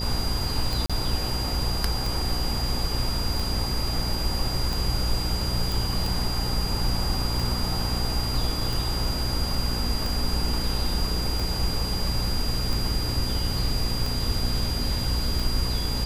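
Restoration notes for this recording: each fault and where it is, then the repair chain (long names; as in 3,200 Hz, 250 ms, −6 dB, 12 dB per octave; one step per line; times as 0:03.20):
mains buzz 60 Hz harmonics 9 −30 dBFS
scratch tick 45 rpm
whistle 4,800 Hz −31 dBFS
0:00.86–0:00.90: drop-out 36 ms
0:05.72: click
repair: click removal
notch filter 4,800 Hz, Q 30
hum removal 60 Hz, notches 9
repair the gap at 0:00.86, 36 ms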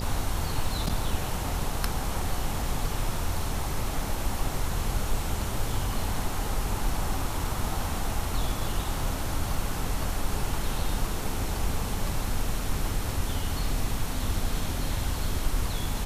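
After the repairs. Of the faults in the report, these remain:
none of them is left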